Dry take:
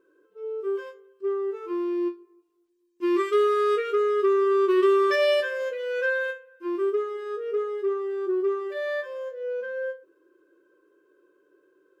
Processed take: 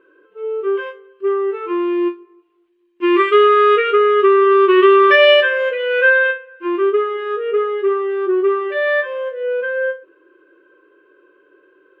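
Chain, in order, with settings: EQ curve 230 Hz 0 dB, 2900 Hz +10 dB, 5400 Hz -14 dB; gain +7 dB

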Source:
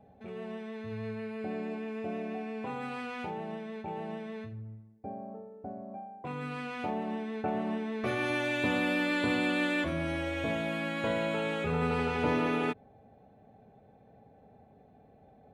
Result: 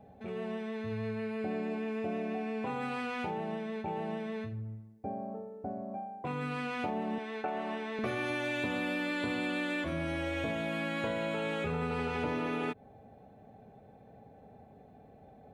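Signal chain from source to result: 7.18–7.99 weighting filter A; compressor 5:1, threshold -34 dBFS, peak gain reduction 9 dB; gain +3 dB

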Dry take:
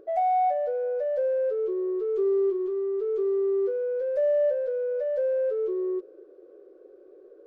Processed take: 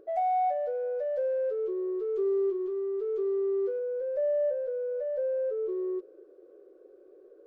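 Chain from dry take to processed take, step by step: 3.79–5.69 high shelf 2000 Hz -10 dB; gain -3.5 dB

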